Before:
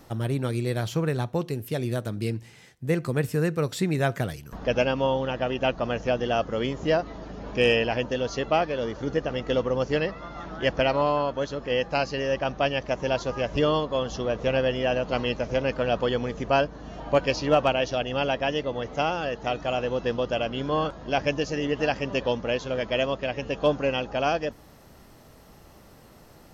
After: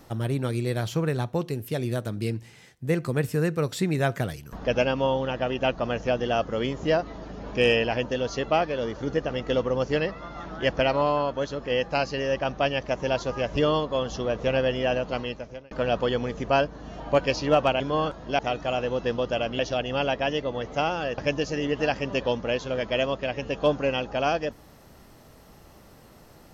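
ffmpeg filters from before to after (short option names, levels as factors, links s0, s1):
-filter_complex "[0:a]asplit=6[s0][s1][s2][s3][s4][s5];[s0]atrim=end=15.71,asetpts=PTS-STARTPTS,afade=t=out:st=14.93:d=0.78[s6];[s1]atrim=start=15.71:end=17.802,asetpts=PTS-STARTPTS,afade=t=in:d=0.004:c=hsin[s7];[s2]atrim=start=20.588:end=21.182[s8];[s3]atrim=start=19.388:end=20.592[s9];[s4]atrim=start=17.798:end=19.392[s10];[s5]atrim=start=21.178[s11];[s6][s7]concat=n=2:v=0:a=1[s12];[s12][s8]acrossfade=d=0.004:c1=hsin:c2=hsin[s13];[s13][s9]acrossfade=d=0.004:c1=hsin:c2=hsin[s14];[s14][s10]acrossfade=d=0.004:c1=hsin:c2=hsin[s15];[s15][s11]acrossfade=d=0.004:c1=hsin:c2=hsin"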